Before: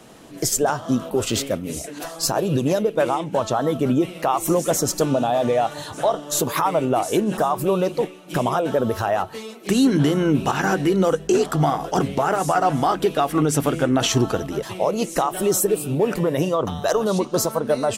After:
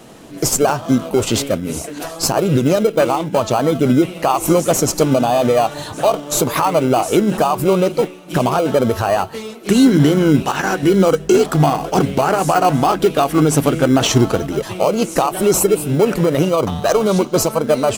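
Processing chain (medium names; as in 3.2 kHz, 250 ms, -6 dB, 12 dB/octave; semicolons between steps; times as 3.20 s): 10.42–10.83 s: bass shelf 380 Hz -10.5 dB; in parallel at -10 dB: sample-rate reducer 1.8 kHz, jitter 0%; on the sum: wow and flutter 22 cents; trim +4 dB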